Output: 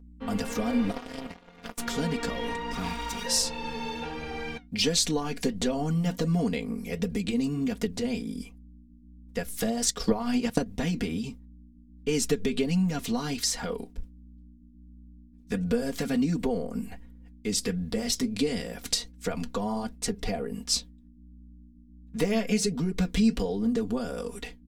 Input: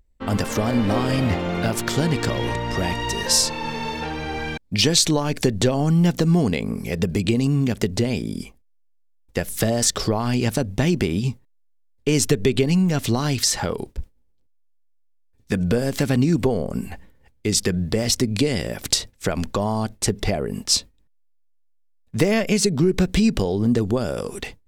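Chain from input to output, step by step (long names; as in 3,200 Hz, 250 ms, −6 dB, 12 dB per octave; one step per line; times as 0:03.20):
0:02.72–0:03.24: lower of the sound and its delayed copy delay 0.85 ms
mains hum 60 Hz, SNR 19 dB
flanger 1.4 Hz, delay 4.3 ms, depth 4.9 ms, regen −69%
0:00.91–0:01.78: power curve on the samples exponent 3
comb filter 4.2 ms, depth 93%
0:09.86–0:10.66: transient designer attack +10 dB, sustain −7 dB
level −6 dB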